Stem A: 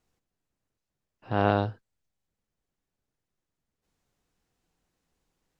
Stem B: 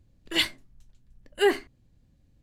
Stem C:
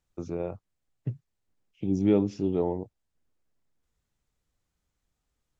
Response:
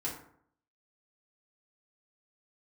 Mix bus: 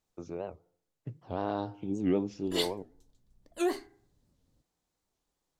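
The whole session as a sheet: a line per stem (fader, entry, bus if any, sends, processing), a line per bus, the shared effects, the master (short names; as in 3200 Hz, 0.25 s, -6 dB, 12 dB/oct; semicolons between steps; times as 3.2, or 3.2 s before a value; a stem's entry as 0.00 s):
-5.0 dB, 0.00 s, bus A, send -17.5 dB, dry
-3.5 dB, 2.20 s, bus A, send -21.5 dB, dry
-4.0 dB, 0.00 s, no bus, send -21.5 dB, dry
bus A: 0.0 dB, band shelf 2000 Hz -11 dB 1.3 oct; limiter -19 dBFS, peak gain reduction 5.5 dB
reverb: on, RT60 0.65 s, pre-delay 3 ms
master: low shelf 210 Hz -8 dB; record warp 78 rpm, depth 250 cents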